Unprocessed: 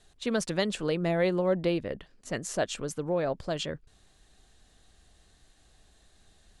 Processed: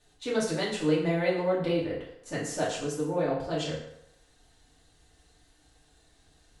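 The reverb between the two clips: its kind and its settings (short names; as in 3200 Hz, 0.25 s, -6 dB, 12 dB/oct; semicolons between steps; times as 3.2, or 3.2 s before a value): FDN reverb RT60 0.79 s, low-frequency decay 0.75×, high-frequency decay 0.75×, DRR -7 dB; gain -7 dB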